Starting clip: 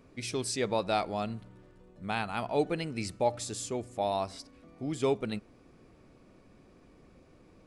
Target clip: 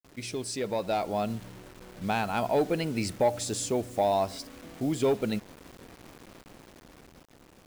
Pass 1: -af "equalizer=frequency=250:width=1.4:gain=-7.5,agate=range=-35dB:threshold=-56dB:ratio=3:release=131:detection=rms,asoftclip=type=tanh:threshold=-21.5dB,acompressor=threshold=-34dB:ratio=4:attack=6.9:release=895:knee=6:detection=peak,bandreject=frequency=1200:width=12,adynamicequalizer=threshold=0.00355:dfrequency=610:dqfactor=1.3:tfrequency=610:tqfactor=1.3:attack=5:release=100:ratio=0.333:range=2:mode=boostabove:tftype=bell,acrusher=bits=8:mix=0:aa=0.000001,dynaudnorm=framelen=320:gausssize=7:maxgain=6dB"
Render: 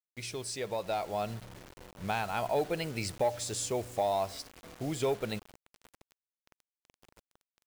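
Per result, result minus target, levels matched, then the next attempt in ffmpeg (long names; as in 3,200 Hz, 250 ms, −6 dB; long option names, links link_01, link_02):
250 Hz band −4.0 dB; downward compressor: peak gain reduction +4 dB
-af "equalizer=frequency=250:width=1.4:gain=2,agate=range=-35dB:threshold=-56dB:ratio=3:release=131:detection=rms,asoftclip=type=tanh:threshold=-21.5dB,acompressor=threshold=-34dB:ratio=4:attack=6.9:release=895:knee=6:detection=peak,bandreject=frequency=1200:width=12,adynamicequalizer=threshold=0.00355:dfrequency=610:dqfactor=1.3:tfrequency=610:tqfactor=1.3:attack=5:release=100:ratio=0.333:range=2:mode=boostabove:tftype=bell,acrusher=bits=8:mix=0:aa=0.000001,dynaudnorm=framelen=320:gausssize=7:maxgain=6dB"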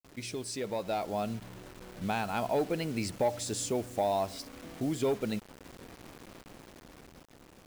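downward compressor: peak gain reduction +4.5 dB
-af "equalizer=frequency=250:width=1.4:gain=2,agate=range=-35dB:threshold=-56dB:ratio=3:release=131:detection=rms,asoftclip=type=tanh:threshold=-21.5dB,acompressor=threshold=-28dB:ratio=4:attack=6.9:release=895:knee=6:detection=peak,bandreject=frequency=1200:width=12,adynamicequalizer=threshold=0.00355:dfrequency=610:dqfactor=1.3:tfrequency=610:tqfactor=1.3:attack=5:release=100:ratio=0.333:range=2:mode=boostabove:tftype=bell,acrusher=bits=8:mix=0:aa=0.000001,dynaudnorm=framelen=320:gausssize=7:maxgain=6dB"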